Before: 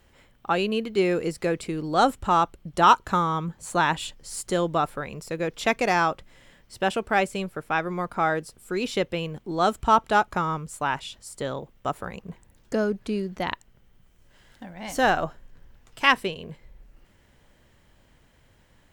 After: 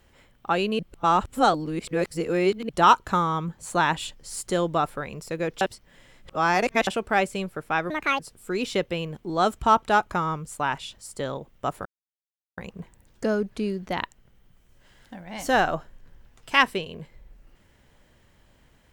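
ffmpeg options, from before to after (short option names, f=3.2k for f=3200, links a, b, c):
-filter_complex "[0:a]asplit=8[a][b][c][d][e][f][g][h];[a]atrim=end=0.792[i];[b]atrim=start=0.788:end=2.692,asetpts=PTS-STARTPTS,areverse[j];[c]atrim=start=2.688:end=5.612[k];[d]atrim=start=5.608:end=6.872,asetpts=PTS-STARTPTS,areverse[l];[e]atrim=start=6.868:end=7.904[m];[f]atrim=start=7.9:end=8.41,asetpts=PTS-STARTPTS,asetrate=76293,aresample=44100[n];[g]atrim=start=8.406:end=12.07,asetpts=PTS-STARTPTS,afade=t=out:st=3.66:d=0.004:c=hsin,apad=pad_dur=0.72[o];[h]atrim=start=12.07,asetpts=PTS-STARTPTS,afade=t=in:d=0.004:c=hsin[p];[i][j]acrossfade=d=0.004:c1=hsin:c2=hsin[q];[q][k]acrossfade=d=0.004:c1=hsin:c2=hsin[r];[r][l]acrossfade=d=0.004:c1=hsin:c2=hsin[s];[s][m]acrossfade=d=0.004:c1=hsin:c2=hsin[t];[t][n]acrossfade=d=0.004:c1=hsin:c2=hsin[u];[o][p]concat=n=2:v=0:a=1[v];[u][v]acrossfade=d=0.004:c1=hsin:c2=hsin"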